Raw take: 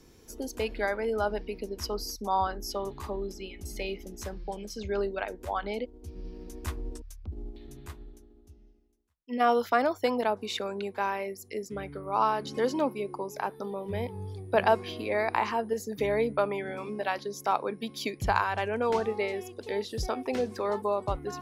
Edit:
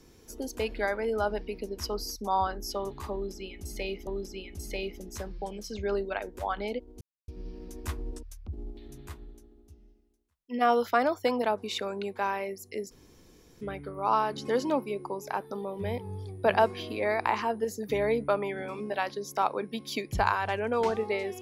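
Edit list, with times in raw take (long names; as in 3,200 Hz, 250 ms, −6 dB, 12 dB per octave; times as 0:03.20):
0:03.13–0:04.07: repeat, 2 plays
0:06.07: splice in silence 0.27 s
0:11.70: splice in room tone 0.70 s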